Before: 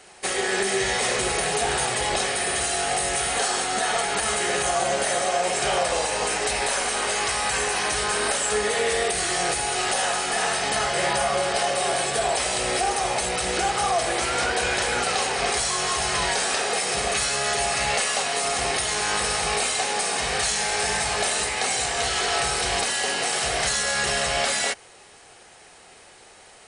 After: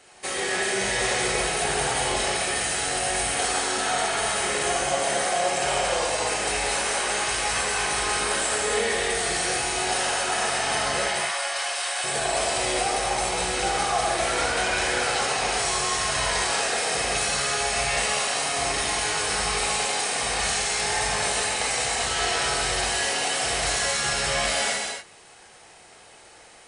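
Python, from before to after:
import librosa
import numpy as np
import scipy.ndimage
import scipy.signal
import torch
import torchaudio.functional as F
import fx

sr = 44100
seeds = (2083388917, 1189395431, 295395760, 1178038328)

y = fx.highpass(x, sr, hz=1100.0, slope=12, at=(11.02, 12.04))
y = fx.rev_gated(y, sr, seeds[0], gate_ms=310, shape='flat', drr_db=-3.0)
y = y * 10.0 ** (-5.0 / 20.0)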